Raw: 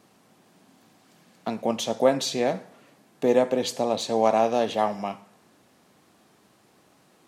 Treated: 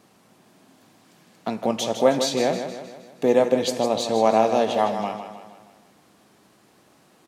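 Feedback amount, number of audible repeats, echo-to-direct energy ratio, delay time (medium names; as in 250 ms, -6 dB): 50%, 5, -8.0 dB, 157 ms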